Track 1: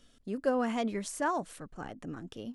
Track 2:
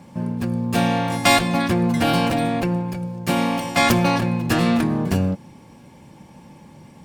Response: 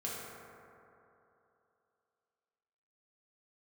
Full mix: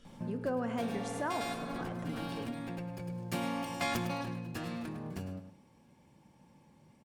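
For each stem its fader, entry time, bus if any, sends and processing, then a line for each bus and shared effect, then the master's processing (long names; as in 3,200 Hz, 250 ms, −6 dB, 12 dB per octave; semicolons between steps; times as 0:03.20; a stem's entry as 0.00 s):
+1.0 dB, 0.00 s, send −8 dB, no echo send, high-shelf EQ 4,700 Hz −8.5 dB
0:03.96 −7.5 dB → 0:04.53 −17.5 dB, 0.05 s, no send, echo send −11 dB, automatic ducking −16 dB, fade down 1.90 s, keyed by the first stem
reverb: on, RT60 3.0 s, pre-delay 3 ms
echo: repeating echo 104 ms, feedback 23%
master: downward compressor 2 to 1, threshold −38 dBFS, peak gain reduction 10 dB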